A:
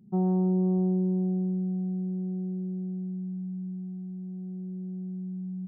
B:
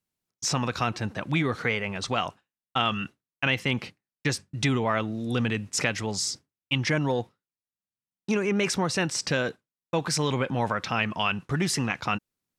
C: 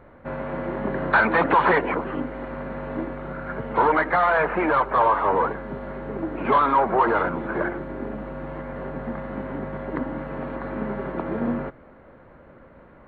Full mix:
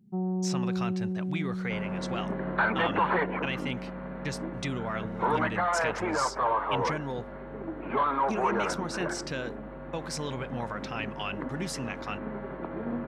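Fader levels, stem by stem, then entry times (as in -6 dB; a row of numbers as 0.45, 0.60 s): -5.0, -9.0, -8.0 dB; 0.00, 0.00, 1.45 s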